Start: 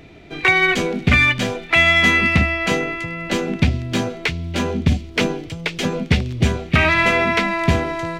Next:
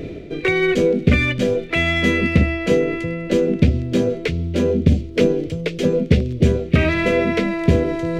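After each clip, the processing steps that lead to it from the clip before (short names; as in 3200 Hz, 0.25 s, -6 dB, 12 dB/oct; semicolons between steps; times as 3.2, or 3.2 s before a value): resonant low shelf 650 Hz +8 dB, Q 3; reverse; upward compressor, threshold -11 dBFS; reverse; notches 60/120 Hz; gain -6 dB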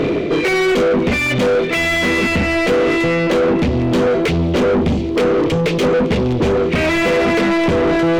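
compressor, threshold -17 dBFS, peak gain reduction 8.5 dB; bell 1200 Hz -5 dB 1.9 oct; overdrive pedal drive 33 dB, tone 1700 Hz, clips at -7 dBFS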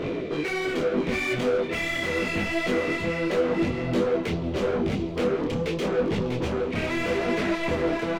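echo 0.645 s -6 dB; detuned doubles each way 28 cents; gain -8 dB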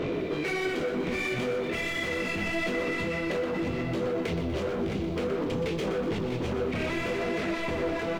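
limiter -23 dBFS, peak gain reduction 8.5 dB; lo-fi delay 0.122 s, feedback 55%, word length 10-bit, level -9 dB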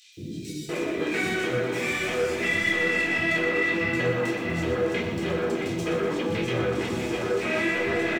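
three bands offset in time highs, lows, mids 0.17/0.69 s, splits 260/4300 Hz; reverb, pre-delay 3 ms, DRR -1.5 dB; gain +4 dB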